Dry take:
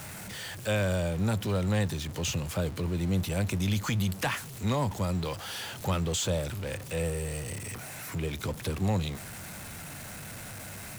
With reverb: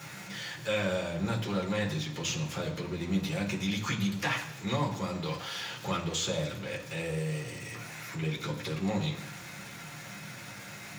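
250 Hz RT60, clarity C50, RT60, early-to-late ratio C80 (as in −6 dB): 0.95 s, 9.0 dB, 1.0 s, 11.5 dB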